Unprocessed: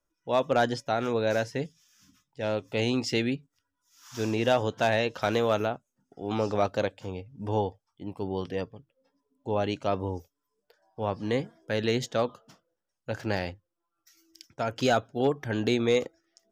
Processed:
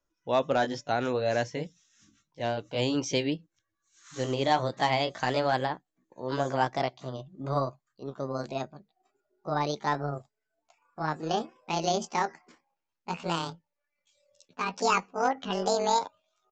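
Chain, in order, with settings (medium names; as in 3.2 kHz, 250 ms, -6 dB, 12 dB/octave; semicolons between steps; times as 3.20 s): pitch bend over the whole clip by +11 st starting unshifted; resampled via 16 kHz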